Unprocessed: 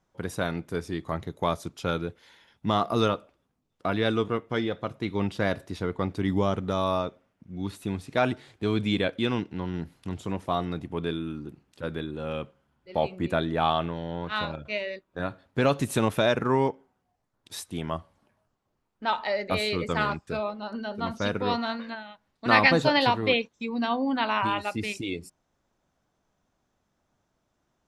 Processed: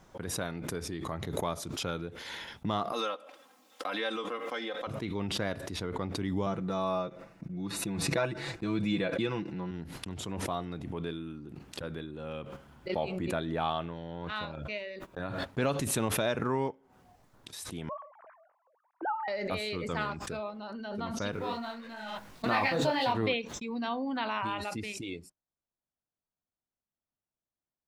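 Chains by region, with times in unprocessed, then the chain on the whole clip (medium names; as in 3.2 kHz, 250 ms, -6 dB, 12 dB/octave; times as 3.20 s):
2.92–4.87 s: high-pass 560 Hz + comb 3.8 ms, depth 83% + three bands compressed up and down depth 40%
6.46–9.71 s: treble shelf 10 kHz -8 dB + band-stop 3.2 kHz, Q 6.6 + comb 6 ms, depth 71%
17.89–19.28 s: formants replaced by sine waves + low-pass 1.7 kHz 24 dB/octave + decay stretcher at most 110 dB/s
21.32–23.13 s: companding laws mixed up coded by mu + dynamic bell 710 Hz, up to +4 dB, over -32 dBFS, Q 1.3 + detune thickener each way 37 cents
whole clip: gate -46 dBFS, range -17 dB; swell ahead of each attack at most 29 dB/s; trim -7.5 dB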